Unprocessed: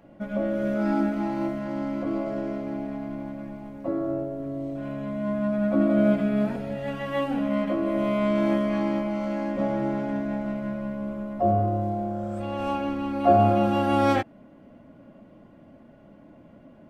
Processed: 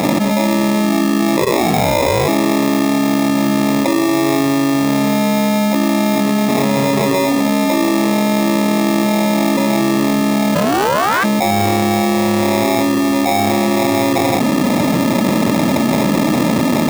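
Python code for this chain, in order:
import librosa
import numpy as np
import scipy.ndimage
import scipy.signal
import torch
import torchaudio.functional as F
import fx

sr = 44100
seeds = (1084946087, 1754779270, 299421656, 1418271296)

y = fx.echo_multitap(x, sr, ms=(91, 166), db=(-8.5, -11.0))
y = fx.ring_mod(y, sr, carrier_hz=fx.line((1.36, 890.0), (2.27, 180.0)), at=(1.36, 2.27), fade=0.02)
y = fx.sample_hold(y, sr, seeds[0], rate_hz=1500.0, jitter_pct=0)
y = fx.ring_mod(y, sr, carrier_hz=fx.line((10.54, 350.0), (11.23, 1400.0)), at=(10.54, 11.23), fade=0.02)
y = scipy.signal.sosfilt(scipy.signal.butter(2, 190.0, 'highpass', fs=sr, output='sos'), y)
y = fx.low_shelf(y, sr, hz=240.0, db=8.0)
y = fx.env_flatten(y, sr, amount_pct=100)
y = y * librosa.db_to_amplitude(-1.0)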